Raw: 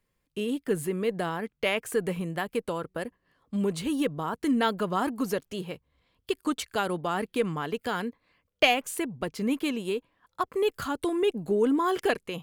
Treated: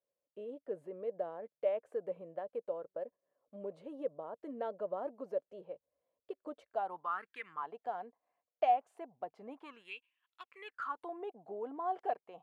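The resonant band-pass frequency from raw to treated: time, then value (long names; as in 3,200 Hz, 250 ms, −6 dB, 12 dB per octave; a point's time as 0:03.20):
resonant band-pass, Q 6.6
0:06.68 580 Hz
0:07.45 2,100 Hz
0:07.70 720 Hz
0:09.55 720 Hz
0:09.96 2,700 Hz
0:10.48 2,700 Hz
0:11.11 730 Hz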